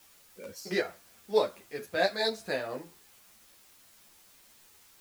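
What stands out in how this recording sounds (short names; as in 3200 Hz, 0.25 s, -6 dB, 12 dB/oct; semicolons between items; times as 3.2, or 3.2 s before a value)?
tremolo triangle 4.5 Hz, depth 40%; a quantiser's noise floor 10-bit, dither triangular; a shimmering, thickened sound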